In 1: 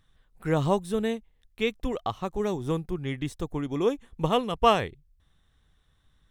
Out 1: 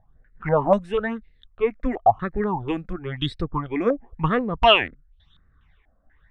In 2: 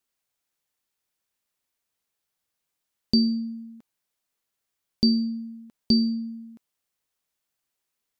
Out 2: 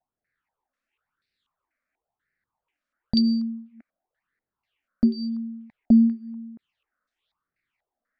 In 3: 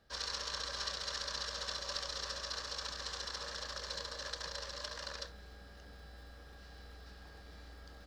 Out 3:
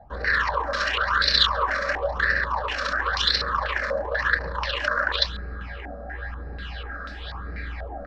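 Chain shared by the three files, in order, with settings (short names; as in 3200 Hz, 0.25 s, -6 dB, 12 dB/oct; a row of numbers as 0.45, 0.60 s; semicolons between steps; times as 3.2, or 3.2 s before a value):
phaser stages 8, 0.96 Hz, lowest notch 110–1000 Hz; stepped low-pass 4.1 Hz 740–3500 Hz; match loudness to -23 LUFS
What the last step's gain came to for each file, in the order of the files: +6.0, +4.0, +19.0 dB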